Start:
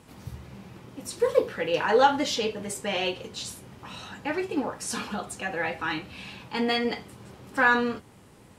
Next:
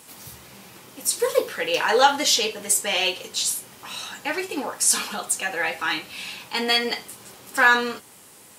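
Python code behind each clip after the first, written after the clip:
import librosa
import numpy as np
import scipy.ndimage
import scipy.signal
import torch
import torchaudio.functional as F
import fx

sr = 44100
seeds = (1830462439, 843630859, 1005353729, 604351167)

y = fx.riaa(x, sr, side='recording')
y = F.gain(torch.from_numpy(y), 3.5).numpy()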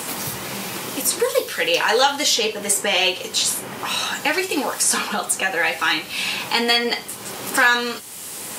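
y = fx.band_squash(x, sr, depth_pct=70)
y = F.gain(torch.from_numpy(y), 4.0).numpy()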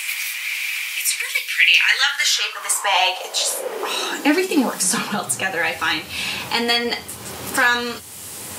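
y = fx.filter_sweep_highpass(x, sr, from_hz=2300.0, to_hz=85.0, start_s=1.83, end_s=5.74, q=6.4)
y = F.gain(torch.from_numpy(y), -1.0).numpy()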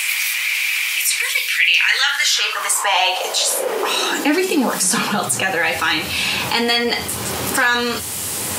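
y = fx.env_flatten(x, sr, amount_pct=50)
y = F.gain(torch.from_numpy(y), -1.5).numpy()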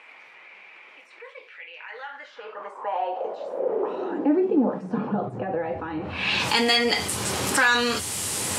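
y = fx.filter_sweep_lowpass(x, sr, from_hz=580.0, to_hz=9200.0, start_s=5.99, end_s=6.5, q=0.95)
y = F.gain(torch.from_numpy(y), -3.5).numpy()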